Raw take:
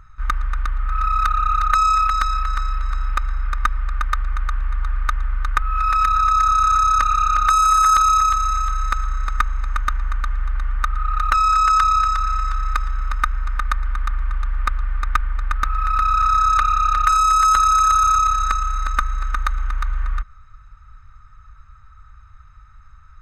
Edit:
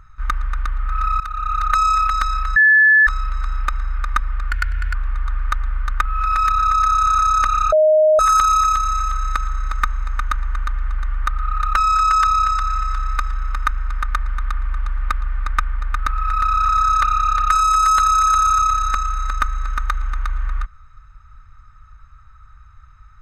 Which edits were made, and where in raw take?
0:01.20–0:01.87: fade in equal-power, from −14 dB
0:02.56: insert tone 1,730 Hz −8 dBFS 0.51 s
0:04.00–0:04.51: play speed 118%
0:07.29–0:07.76: beep over 620 Hz −9.5 dBFS

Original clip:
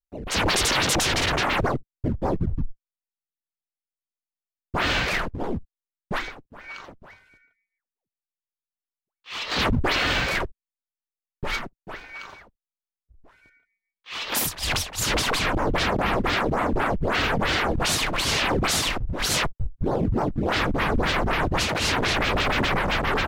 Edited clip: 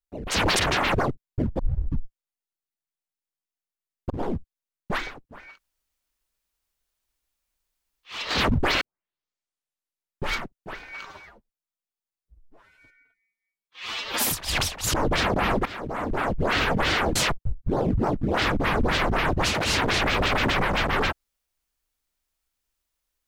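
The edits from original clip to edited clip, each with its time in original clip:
0:00.59–0:01.25: remove
0:02.25: tape start 0.34 s
0:04.76–0:05.31: remove
0:06.68–0:09.32: fill with room tone, crossfade 0.24 s
0:10.02: tape start 1.46 s
0:12.26–0:14.39: time-stretch 1.5×
0:15.08–0:15.56: remove
0:16.28–0:17.05: fade in, from −17.5 dB
0:17.78–0:19.30: remove

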